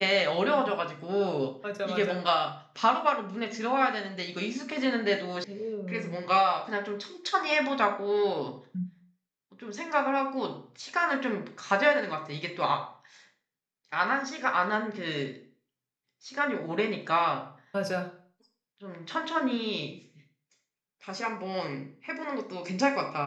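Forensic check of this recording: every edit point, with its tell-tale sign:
0:05.44: cut off before it has died away

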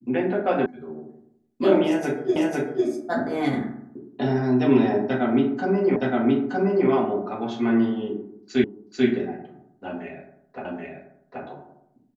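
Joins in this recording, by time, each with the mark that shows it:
0:00.66: cut off before it has died away
0:02.36: the same again, the last 0.5 s
0:05.96: the same again, the last 0.92 s
0:08.64: the same again, the last 0.44 s
0:10.65: the same again, the last 0.78 s

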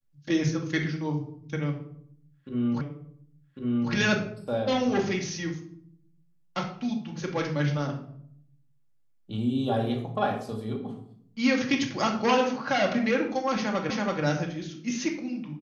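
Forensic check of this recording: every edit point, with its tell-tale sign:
0:02.81: the same again, the last 1.1 s
0:13.90: the same again, the last 0.33 s

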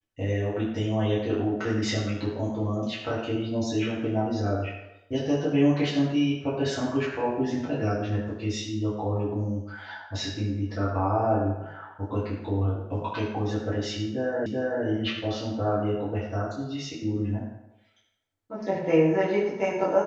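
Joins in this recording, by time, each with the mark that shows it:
0:14.46: the same again, the last 0.38 s

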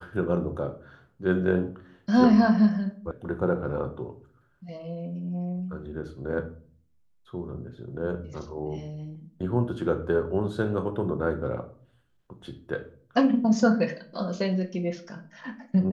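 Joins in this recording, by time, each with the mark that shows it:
0:03.11: cut off before it has died away

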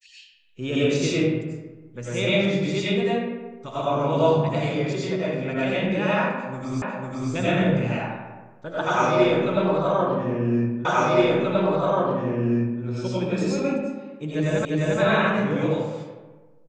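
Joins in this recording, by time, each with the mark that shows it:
0:06.82: the same again, the last 0.5 s
0:10.85: the same again, the last 1.98 s
0:14.65: the same again, the last 0.35 s

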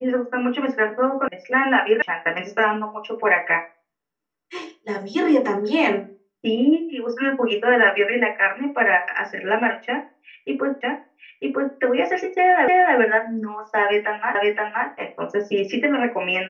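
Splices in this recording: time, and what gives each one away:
0:01.28: cut off before it has died away
0:02.02: cut off before it has died away
0:10.81: the same again, the last 0.95 s
0:12.68: the same again, the last 0.3 s
0:14.35: the same again, the last 0.52 s

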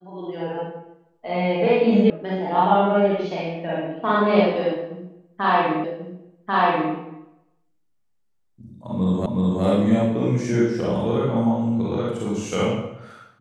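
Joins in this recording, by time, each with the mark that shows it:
0:02.10: cut off before it has died away
0:05.84: the same again, the last 1.09 s
0:09.26: the same again, the last 0.37 s

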